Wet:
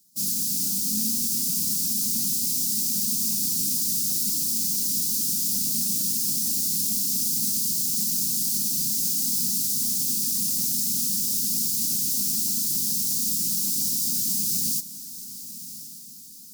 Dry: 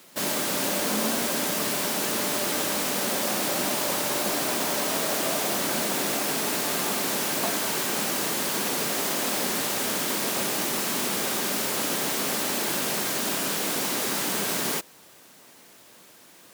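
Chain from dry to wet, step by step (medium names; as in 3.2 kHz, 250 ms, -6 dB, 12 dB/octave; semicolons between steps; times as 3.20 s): rattle on loud lows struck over -36 dBFS, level -18 dBFS; elliptic band-stop 220–5000 Hz, stop band 80 dB; treble shelf 3.9 kHz +6 dB; on a send: echo that smears into a reverb 1133 ms, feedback 57%, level -10 dB; on the sum: upward expansion 1.5:1, over -46 dBFS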